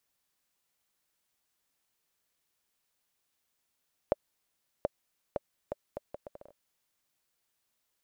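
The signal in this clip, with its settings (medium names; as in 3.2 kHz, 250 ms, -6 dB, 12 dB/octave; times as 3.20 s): bouncing ball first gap 0.73 s, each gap 0.7, 582 Hz, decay 26 ms -12.5 dBFS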